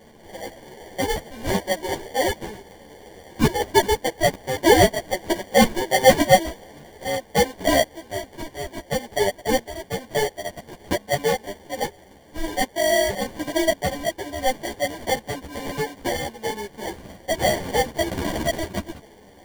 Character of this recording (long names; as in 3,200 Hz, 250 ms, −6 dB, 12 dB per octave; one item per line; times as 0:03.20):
aliases and images of a low sample rate 1,300 Hz, jitter 0%
a shimmering, thickened sound